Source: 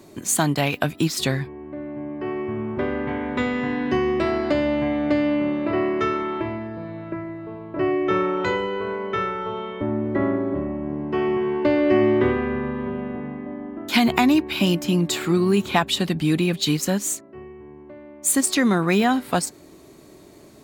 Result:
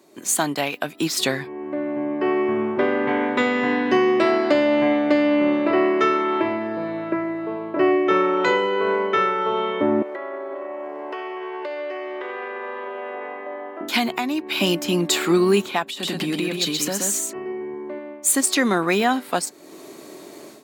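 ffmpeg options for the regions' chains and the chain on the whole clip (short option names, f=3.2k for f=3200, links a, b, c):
-filter_complex "[0:a]asettb=1/sr,asplit=3[a][b][c];[a]atrim=end=10.024[d];[b]atrim=start=10.02:end=13.81,asetpts=PTS-STARTPTS,afade=t=in:d=0.004:c=qsin,afade=t=out:st=3.786:d=0.004:c=qsin,highpass=f=460:w=0.5412,highpass=f=460:w=1.3066,acompressor=threshold=-35dB:ratio=12:attack=3.2:release=140:knee=1:detection=peak[e];[c]atrim=start=13.806[f];[d][e]acrossfade=d=0.004:c1=hsin:c2=qsin[g];[g][f]acrossfade=d=0.004:c1=qsin:c2=hsin,asettb=1/sr,asplit=3[h][i][j];[h]atrim=end=15.904[k];[i]atrim=start=15.9:end=17.99,asetpts=PTS-STARTPTS,afade=t=in:d=0.004:c=qsin,afade=t=out:st=2.086:d=0.004:c=qsin,acompressor=threshold=-26dB:ratio=12:attack=3.2:release=140:knee=1:detection=peak,aecho=1:1:127:0.668,atrim=end_sample=92169[l];[j]atrim=start=17.986[m];[k][l]acrossfade=d=0.004:c1=hsin:c2=qsin[n];[n][m]acrossfade=d=0.004:c1=qsin:c2=hsin,highpass=290,dynaudnorm=f=120:g=3:m=15dB,volume=-6dB"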